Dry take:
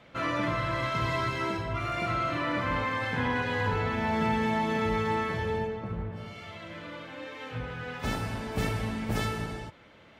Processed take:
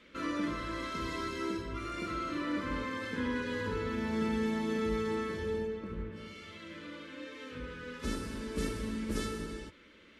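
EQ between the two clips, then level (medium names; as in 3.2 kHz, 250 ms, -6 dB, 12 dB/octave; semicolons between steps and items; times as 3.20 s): dynamic bell 2.4 kHz, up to -8 dB, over -48 dBFS, Q 0.96; brick-wall FIR low-pass 12 kHz; static phaser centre 310 Hz, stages 4; 0.0 dB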